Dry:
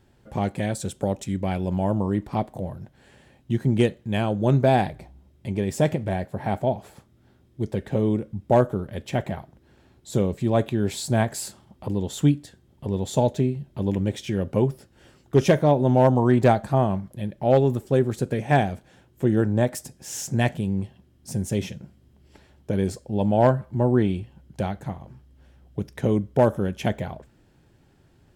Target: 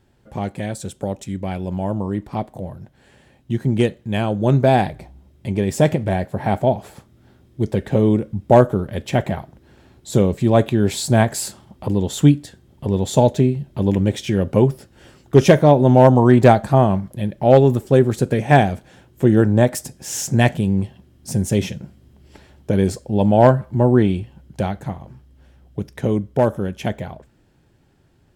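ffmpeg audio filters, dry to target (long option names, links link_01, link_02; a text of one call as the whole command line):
ffmpeg -i in.wav -af "dynaudnorm=framelen=850:gausssize=11:maxgain=11.5dB" out.wav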